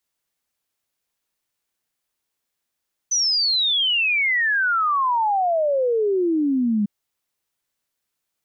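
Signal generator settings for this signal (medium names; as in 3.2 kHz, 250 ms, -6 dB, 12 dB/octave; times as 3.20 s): log sweep 6.1 kHz -> 200 Hz 3.75 s -17 dBFS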